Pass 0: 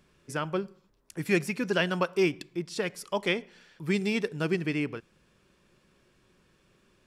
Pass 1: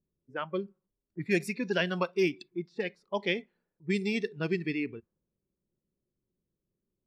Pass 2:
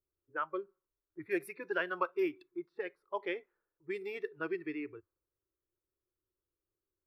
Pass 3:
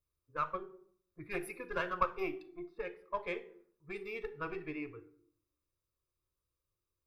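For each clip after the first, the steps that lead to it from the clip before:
noise reduction from a noise print of the clip's start 16 dB; low-pass that shuts in the quiet parts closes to 410 Hz, open at −24 dBFS; level −2 dB
drawn EQ curve 100 Hz 0 dB, 220 Hz −23 dB, 310 Hz +2 dB, 500 Hz +1 dB, 720 Hz −1 dB, 1,300 Hz +10 dB, 2,000 Hz −1 dB, 7,100 Hz −20 dB, 11,000 Hz +4 dB; level −6.5 dB
one-sided soft clipper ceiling −28 dBFS; convolution reverb RT60 0.60 s, pre-delay 4 ms, DRR 10 dB; level −3 dB

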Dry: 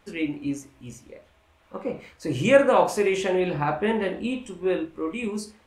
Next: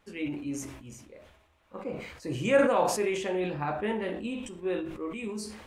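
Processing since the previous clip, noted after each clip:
level that may fall only so fast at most 57 dB per second
level −7 dB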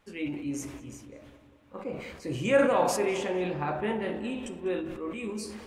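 feedback echo with a low-pass in the loop 198 ms, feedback 60%, low-pass 2,500 Hz, level −12 dB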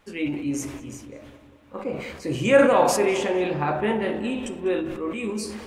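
mains-hum notches 60/120/180 Hz
level +6.5 dB

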